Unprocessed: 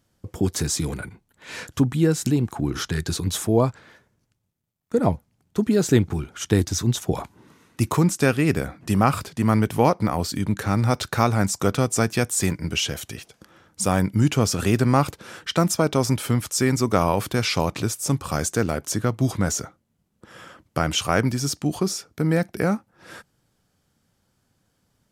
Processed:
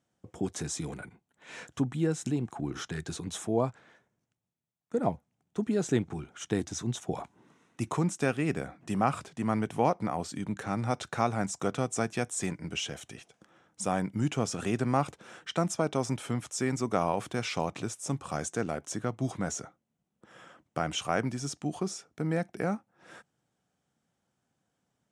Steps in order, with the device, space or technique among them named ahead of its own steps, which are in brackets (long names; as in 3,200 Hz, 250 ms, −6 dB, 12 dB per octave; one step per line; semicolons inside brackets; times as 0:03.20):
car door speaker (loudspeaker in its box 92–9,200 Hz, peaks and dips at 94 Hz −8 dB, 730 Hz +5 dB, 4,600 Hz −8 dB)
level −9 dB